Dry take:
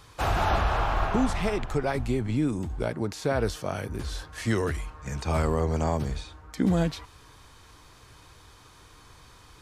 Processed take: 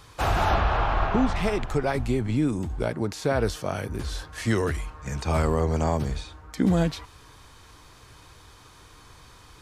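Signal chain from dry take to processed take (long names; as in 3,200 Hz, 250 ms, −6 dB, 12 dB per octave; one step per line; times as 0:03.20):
0:00.54–0:01.36: low-pass filter 4,400 Hz 12 dB per octave
level +2 dB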